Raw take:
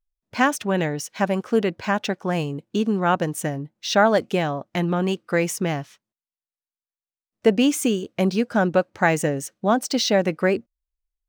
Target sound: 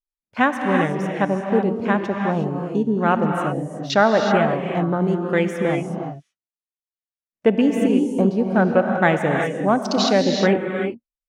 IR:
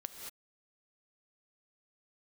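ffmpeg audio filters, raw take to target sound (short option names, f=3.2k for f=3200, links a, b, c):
-filter_complex "[0:a]afwtdn=0.0355[a];[1:a]atrim=start_sample=2205,afade=t=out:st=0.26:d=0.01,atrim=end_sample=11907,asetrate=24696,aresample=44100[b];[a][b]afir=irnorm=-1:irlink=0,volume=2dB"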